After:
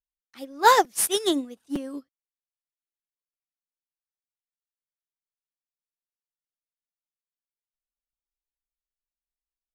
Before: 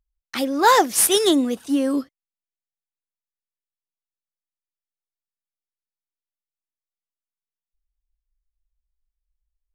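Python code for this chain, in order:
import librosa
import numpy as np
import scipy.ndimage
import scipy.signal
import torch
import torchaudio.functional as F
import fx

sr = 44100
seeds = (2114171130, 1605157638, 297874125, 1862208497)

y = fx.buffer_crackle(x, sr, first_s=0.84, period_s=0.91, block=256, kind='repeat')
y = fx.upward_expand(y, sr, threshold_db=-27.0, expansion=2.5)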